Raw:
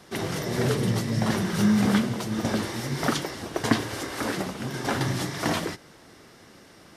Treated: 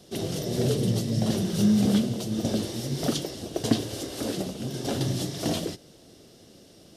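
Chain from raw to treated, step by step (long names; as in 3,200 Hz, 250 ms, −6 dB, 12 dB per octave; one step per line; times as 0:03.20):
flat-topped bell 1,400 Hz −13 dB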